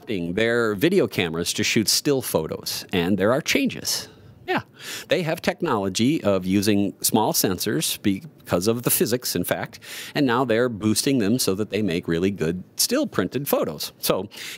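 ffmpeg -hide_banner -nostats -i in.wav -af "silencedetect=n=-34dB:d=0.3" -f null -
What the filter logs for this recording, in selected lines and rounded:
silence_start: 4.05
silence_end: 4.48 | silence_duration: 0.42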